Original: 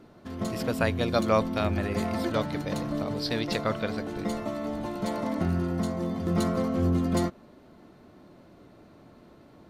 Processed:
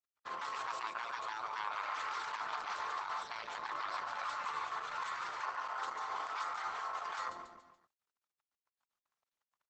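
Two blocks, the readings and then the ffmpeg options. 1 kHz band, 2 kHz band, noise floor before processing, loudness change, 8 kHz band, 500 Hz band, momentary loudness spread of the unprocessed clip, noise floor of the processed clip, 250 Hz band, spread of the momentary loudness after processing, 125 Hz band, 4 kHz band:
-2.0 dB, -4.0 dB, -54 dBFS, -11.0 dB, -10.0 dB, -23.0 dB, 7 LU, under -85 dBFS, -37.5 dB, 3 LU, under -40 dB, -9.5 dB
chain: -af "crystalizer=i=8:c=0,aeval=exprs='sgn(val(0))*max(abs(val(0))-0.00944,0)':c=same,acompressor=threshold=0.0501:ratio=16,aecho=1:1:143|286|429|572:0.251|0.105|0.0443|0.0186,acontrast=86,afftfilt=real='re*lt(hypot(re,im),0.1)':imag='im*lt(hypot(re,im),0.1)':win_size=1024:overlap=0.75,bandpass=f=1100:t=q:w=3.1:csg=0,volume=1.5" -ar 48000 -c:a libopus -b:a 12k

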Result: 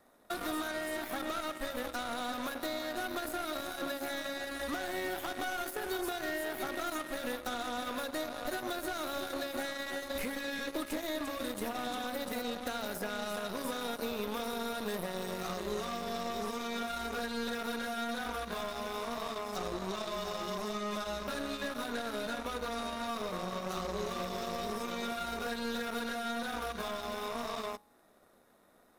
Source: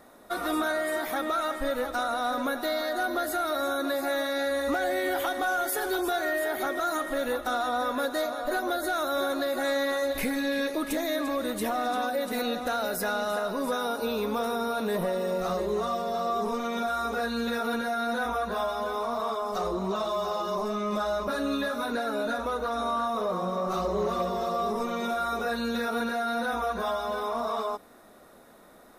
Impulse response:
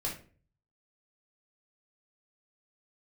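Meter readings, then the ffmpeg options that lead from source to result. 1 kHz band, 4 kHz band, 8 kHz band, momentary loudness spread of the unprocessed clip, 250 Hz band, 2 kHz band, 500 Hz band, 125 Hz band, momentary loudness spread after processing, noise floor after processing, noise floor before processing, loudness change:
-9.0 dB, -3.5 dB, -4.0 dB, 2 LU, -7.0 dB, -7.0 dB, -9.5 dB, -5.5 dB, 2 LU, -63 dBFS, -53 dBFS, -8.0 dB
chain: -filter_complex "[0:a]bandreject=f=55.51:t=h:w=4,bandreject=f=111.02:t=h:w=4,bandreject=f=166.53:t=h:w=4,bandreject=f=222.04:t=h:w=4,bandreject=f=277.55:t=h:w=4,bandreject=f=333.06:t=h:w=4,bandreject=f=388.57:t=h:w=4,bandreject=f=444.08:t=h:w=4,bandreject=f=499.59:t=h:w=4,bandreject=f=555.1:t=h:w=4,bandreject=f=610.61:t=h:w=4,bandreject=f=666.12:t=h:w=4,bandreject=f=721.63:t=h:w=4,bandreject=f=777.14:t=h:w=4,bandreject=f=832.65:t=h:w=4,bandreject=f=888.16:t=h:w=4,bandreject=f=943.67:t=h:w=4,bandreject=f=999.18:t=h:w=4,bandreject=f=1054.69:t=h:w=4,bandreject=f=1110.2:t=h:w=4,bandreject=f=1165.71:t=h:w=4,bandreject=f=1221.22:t=h:w=4,bandreject=f=1276.73:t=h:w=4,bandreject=f=1332.24:t=h:w=4,bandreject=f=1387.75:t=h:w=4,bandreject=f=1443.26:t=h:w=4,bandreject=f=1498.77:t=h:w=4,acrossover=split=330|2000[s0][s1][s2];[s0]acompressor=threshold=0.00708:ratio=4[s3];[s1]acompressor=threshold=0.00891:ratio=4[s4];[s2]acompressor=threshold=0.00501:ratio=4[s5];[s3][s4][s5]amix=inputs=3:normalize=0,aeval=exprs='0.0531*(cos(1*acos(clip(val(0)/0.0531,-1,1)))-cos(1*PI/2))+0.00841*(cos(2*acos(clip(val(0)/0.0531,-1,1)))-cos(2*PI/2))+0.00668*(cos(4*acos(clip(val(0)/0.0531,-1,1)))-cos(4*PI/2))+0.0106*(cos(5*acos(clip(val(0)/0.0531,-1,1)))-cos(5*PI/2))+0.0133*(cos(7*acos(clip(val(0)/0.0531,-1,1)))-cos(7*PI/2))':c=same"

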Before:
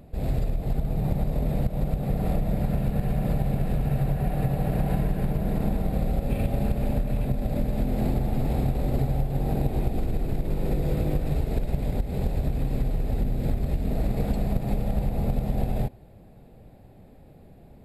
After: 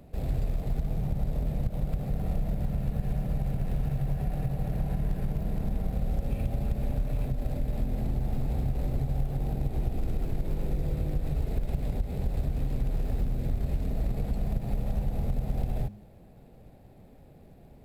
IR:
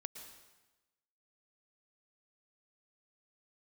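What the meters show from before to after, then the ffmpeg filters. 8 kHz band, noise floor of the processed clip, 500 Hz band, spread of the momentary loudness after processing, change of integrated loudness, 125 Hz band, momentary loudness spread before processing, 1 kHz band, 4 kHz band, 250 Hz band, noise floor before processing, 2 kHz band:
no reading, -53 dBFS, -8.0 dB, 2 LU, -4.5 dB, -4.0 dB, 3 LU, -8.0 dB, -6.0 dB, -7.0 dB, -50 dBFS, -7.0 dB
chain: -filter_complex "[0:a]bandreject=f=103.5:t=h:w=4,bandreject=f=207:t=h:w=4,bandreject=f=310.5:t=h:w=4,asplit=2[s0][s1];[s1]acrusher=bits=3:mode=log:mix=0:aa=0.000001,volume=0.335[s2];[s0][s2]amix=inputs=2:normalize=0,acrossover=split=140[s3][s4];[s4]acompressor=threshold=0.0251:ratio=5[s5];[s3][s5]amix=inputs=2:normalize=0,volume=0.562"

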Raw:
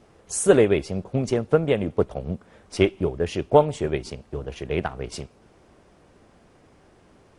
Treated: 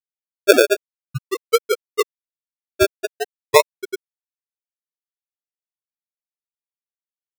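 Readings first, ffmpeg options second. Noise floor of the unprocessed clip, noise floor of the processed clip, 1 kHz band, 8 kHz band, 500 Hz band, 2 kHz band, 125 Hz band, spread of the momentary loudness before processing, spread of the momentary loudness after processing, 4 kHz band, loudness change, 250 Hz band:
-56 dBFS, under -85 dBFS, +3.5 dB, +3.0 dB, +1.5 dB, +8.5 dB, -9.5 dB, 16 LU, 19 LU, +9.0 dB, +4.0 dB, -4.5 dB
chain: -af "afftfilt=real='re*gte(hypot(re,im),0.891)':imag='im*gte(hypot(re,im),0.891)':win_size=1024:overlap=0.75,tiltshelf=f=970:g=4.5,acrusher=samples=34:mix=1:aa=0.000001:lfo=1:lforange=20.4:lforate=0.44,volume=1.19"

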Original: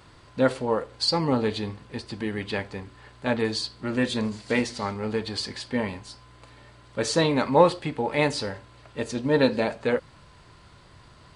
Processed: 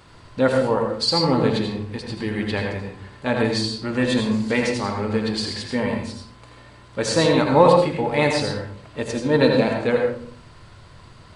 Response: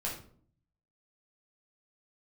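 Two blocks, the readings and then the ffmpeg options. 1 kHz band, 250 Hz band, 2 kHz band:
+5.0 dB, +5.0 dB, +4.5 dB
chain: -filter_complex "[0:a]asplit=2[s0][s1];[1:a]atrim=start_sample=2205,adelay=79[s2];[s1][s2]afir=irnorm=-1:irlink=0,volume=0.562[s3];[s0][s3]amix=inputs=2:normalize=0,volume=1.33"

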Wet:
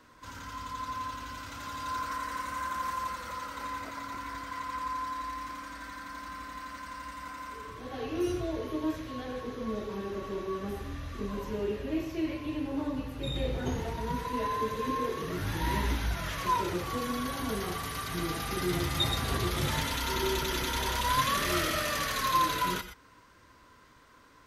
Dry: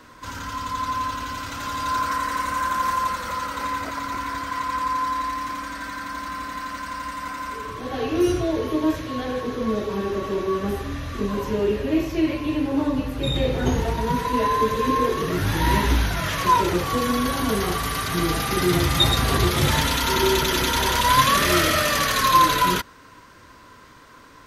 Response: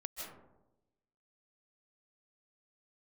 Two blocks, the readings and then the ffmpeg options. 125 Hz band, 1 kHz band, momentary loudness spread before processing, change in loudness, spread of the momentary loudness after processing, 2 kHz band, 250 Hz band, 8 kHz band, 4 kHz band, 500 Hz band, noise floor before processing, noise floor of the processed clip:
-10.0 dB, -10.5 dB, 13 LU, -10.5 dB, 13 LU, -10.0 dB, -10.5 dB, -10.5 dB, -10.5 dB, -10.5 dB, -47 dBFS, -58 dBFS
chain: -filter_complex "[1:a]atrim=start_sample=2205,atrim=end_sample=6174,asetrate=48510,aresample=44100[s0];[0:a][s0]afir=irnorm=-1:irlink=0,volume=0.562"

